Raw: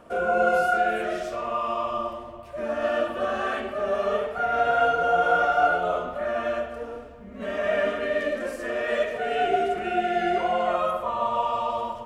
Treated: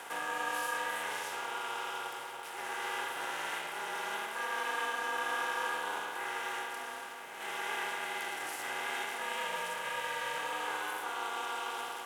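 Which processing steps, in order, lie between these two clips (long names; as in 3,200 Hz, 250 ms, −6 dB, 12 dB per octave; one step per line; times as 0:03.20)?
compressor on every frequency bin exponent 0.4
ring modulation 220 Hz
first difference
level +2 dB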